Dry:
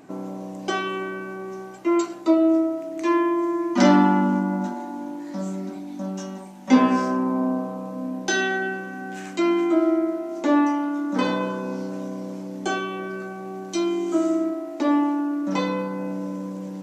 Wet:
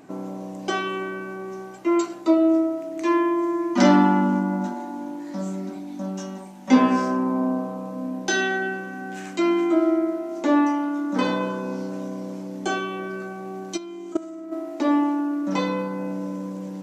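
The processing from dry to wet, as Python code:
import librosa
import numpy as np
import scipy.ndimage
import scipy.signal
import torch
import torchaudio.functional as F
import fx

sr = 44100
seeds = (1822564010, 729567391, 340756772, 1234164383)

y = fx.level_steps(x, sr, step_db=18, at=(13.76, 14.51), fade=0.02)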